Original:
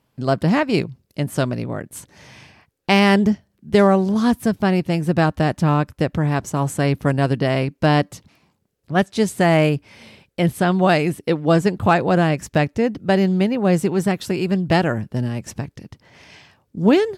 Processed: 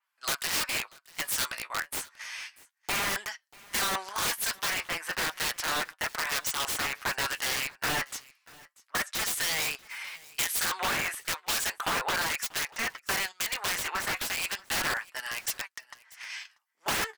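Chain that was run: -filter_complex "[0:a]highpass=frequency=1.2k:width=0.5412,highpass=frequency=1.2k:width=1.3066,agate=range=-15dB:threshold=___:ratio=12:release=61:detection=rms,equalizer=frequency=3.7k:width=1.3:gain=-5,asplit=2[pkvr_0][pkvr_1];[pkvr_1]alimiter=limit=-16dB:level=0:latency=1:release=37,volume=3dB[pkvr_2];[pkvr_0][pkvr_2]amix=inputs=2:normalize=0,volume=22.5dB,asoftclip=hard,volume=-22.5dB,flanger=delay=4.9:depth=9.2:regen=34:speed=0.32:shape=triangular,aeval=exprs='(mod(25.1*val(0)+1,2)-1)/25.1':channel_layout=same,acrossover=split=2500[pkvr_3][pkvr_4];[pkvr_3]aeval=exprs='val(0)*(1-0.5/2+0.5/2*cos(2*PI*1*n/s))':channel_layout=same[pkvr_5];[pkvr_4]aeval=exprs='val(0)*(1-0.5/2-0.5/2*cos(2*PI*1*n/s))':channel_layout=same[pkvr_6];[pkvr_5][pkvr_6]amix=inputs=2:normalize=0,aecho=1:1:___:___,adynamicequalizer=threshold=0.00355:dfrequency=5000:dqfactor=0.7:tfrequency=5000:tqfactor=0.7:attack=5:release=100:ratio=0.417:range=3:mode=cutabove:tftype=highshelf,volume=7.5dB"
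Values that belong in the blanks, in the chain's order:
-48dB, 638, 0.0668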